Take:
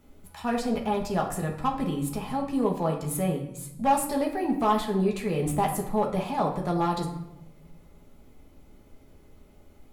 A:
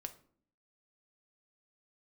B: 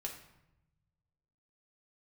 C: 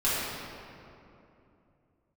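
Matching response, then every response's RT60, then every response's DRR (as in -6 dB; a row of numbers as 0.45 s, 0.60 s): B; 0.55 s, 0.90 s, 2.8 s; 7.5 dB, -0.5 dB, -11.5 dB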